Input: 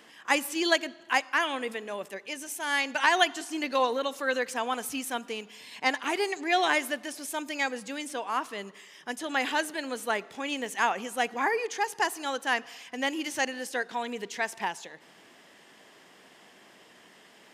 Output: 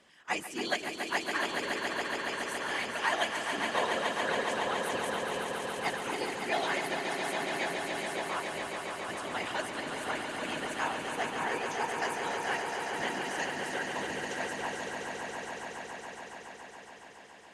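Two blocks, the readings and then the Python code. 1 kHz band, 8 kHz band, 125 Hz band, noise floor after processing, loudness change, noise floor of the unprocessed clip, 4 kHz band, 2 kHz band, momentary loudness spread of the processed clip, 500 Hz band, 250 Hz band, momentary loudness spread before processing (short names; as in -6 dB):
-3.5 dB, -4.0 dB, n/a, -51 dBFS, -4.0 dB, -56 dBFS, -3.5 dB, -3.5 dB, 9 LU, -2.5 dB, -4.5 dB, 11 LU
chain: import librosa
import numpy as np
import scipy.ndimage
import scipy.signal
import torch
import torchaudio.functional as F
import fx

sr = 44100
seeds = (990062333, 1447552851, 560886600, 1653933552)

y = fx.whisperise(x, sr, seeds[0])
y = scipy.signal.sosfilt(scipy.signal.butter(4, 11000.0, 'lowpass', fs=sr, output='sos'), y)
y = fx.echo_swell(y, sr, ms=140, loudest=5, wet_db=-7.0)
y = F.gain(torch.from_numpy(y), -8.0).numpy()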